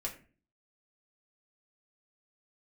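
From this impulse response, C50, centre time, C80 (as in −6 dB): 11.5 dB, 15 ms, 15.5 dB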